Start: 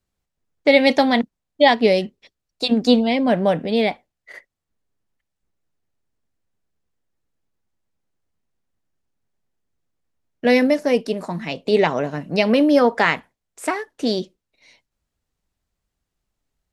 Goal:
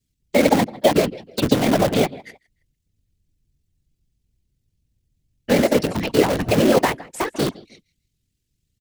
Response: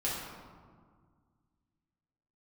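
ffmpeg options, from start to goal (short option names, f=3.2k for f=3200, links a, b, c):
-filter_complex "[0:a]acrossover=split=99|420|1100|3400[a][b][c][d][e];[a]acompressor=threshold=-53dB:ratio=4[f];[b]acompressor=threshold=-19dB:ratio=4[g];[c]acompressor=threshold=-17dB:ratio=4[h];[d]acompressor=threshold=-30dB:ratio=4[i];[e]acompressor=threshold=-41dB:ratio=4[j];[f][g][h][i][j]amix=inputs=5:normalize=0,acrossover=split=350|2200[k][l][m];[l]aeval=exprs='sgn(val(0))*max(abs(val(0))-0.0141,0)':c=same[n];[k][n][m]amix=inputs=3:normalize=0,aecho=1:1:294|588:0.0708|0.0198,afftfilt=real='hypot(re,im)*cos(2*PI*random(0))':imag='hypot(re,im)*sin(2*PI*random(1))':win_size=512:overlap=0.75,asplit=2[o][p];[p]aeval=exprs='(mod(23.7*val(0)+1,2)-1)/23.7':c=same,volume=-4.5dB[q];[o][q]amix=inputs=2:normalize=0,atempo=1.9,volume=9dB"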